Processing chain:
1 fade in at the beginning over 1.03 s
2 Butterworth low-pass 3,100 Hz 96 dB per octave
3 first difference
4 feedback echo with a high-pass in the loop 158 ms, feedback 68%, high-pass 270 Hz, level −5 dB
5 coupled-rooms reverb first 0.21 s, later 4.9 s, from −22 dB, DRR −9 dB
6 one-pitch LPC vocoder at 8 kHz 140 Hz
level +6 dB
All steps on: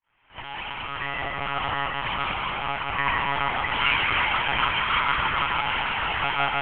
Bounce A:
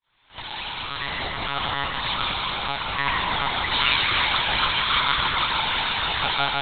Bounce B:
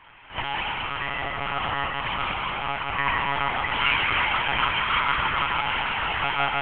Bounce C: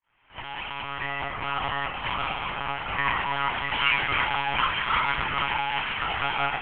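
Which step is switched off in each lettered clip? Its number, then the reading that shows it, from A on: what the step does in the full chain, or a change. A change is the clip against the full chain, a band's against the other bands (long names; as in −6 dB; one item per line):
2, 4 kHz band +6.5 dB
1, change in momentary loudness spread −2 LU
4, change in integrated loudness −2.0 LU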